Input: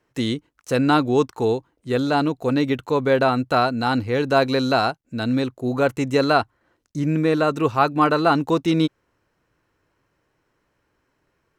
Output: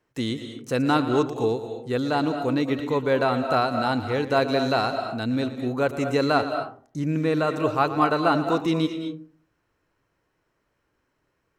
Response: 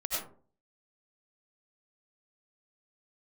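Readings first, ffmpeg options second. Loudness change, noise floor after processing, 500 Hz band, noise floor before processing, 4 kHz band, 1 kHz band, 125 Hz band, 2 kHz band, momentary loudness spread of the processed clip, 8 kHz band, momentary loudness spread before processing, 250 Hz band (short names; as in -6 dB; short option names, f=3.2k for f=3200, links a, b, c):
-3.5 dB, -74 dBFS, -3.0 dB, -72 dBFS, -3.5 dB, -3.0 dB, -3.5 dB, -3.5 dB, 8 LU, n/a, 7 LU, -3.5 dB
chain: -filter_complex "[0:a]asplit=2[a][b];[1:a]atrim=start_sample=2205,adelay=116[c];[b][c]afir=irnorm=-1:irlink=0,volume=-12dB[d];[a][d]amix=inputs=2:normalize=0,volume=-4dB"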